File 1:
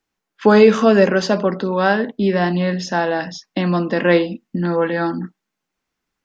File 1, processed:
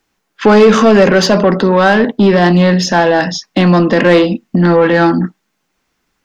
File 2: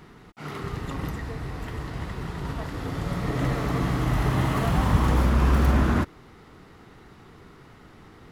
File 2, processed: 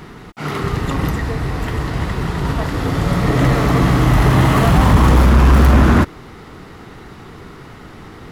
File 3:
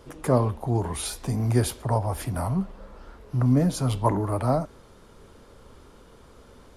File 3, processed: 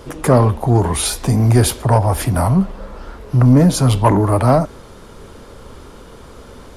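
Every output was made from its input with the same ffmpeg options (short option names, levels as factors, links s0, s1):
-filter_complex "[0:a]asplit=2[s0][s1];[s1]alimiter=limit=0.251:level=0:latency=1:release=26,volume=1.26[s2];[s0][s2]amix=inputs=2:normalize=0,acontrast=63,volume=0.891"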